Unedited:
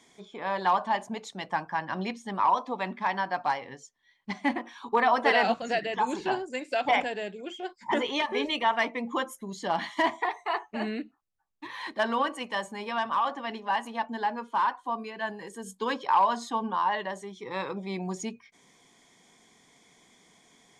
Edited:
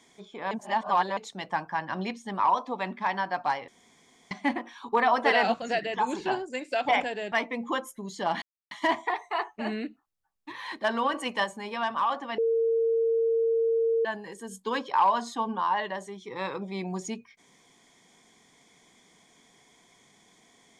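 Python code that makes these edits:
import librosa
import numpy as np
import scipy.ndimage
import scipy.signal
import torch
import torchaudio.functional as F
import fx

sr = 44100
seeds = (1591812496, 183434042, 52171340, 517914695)

y = fx.edit(x, sr, fx.reverse_span(start_s=0.51, length_s=0.66),
    fx.room_tone_fill(start_s=3.68, length_s=0.63),
    fx.cut(start_s=7.32, length_s=1.44),
    fx.insert_silence(at_s=9.86, length_s=0.29),
    fx.clip_gain(start_s=12.29, length_s=0.3, db=4.0),
    fx.bleep(start_s=13.53, length_s=1.67, hz=456.0, db=-21.5), tone=tone)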